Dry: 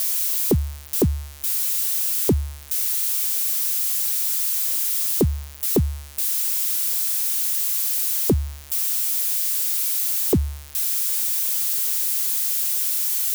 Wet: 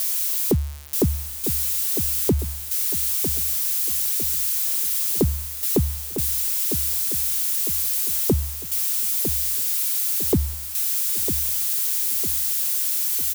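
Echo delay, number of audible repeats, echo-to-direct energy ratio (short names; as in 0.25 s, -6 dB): 0.953 s, 4, -8.5 dB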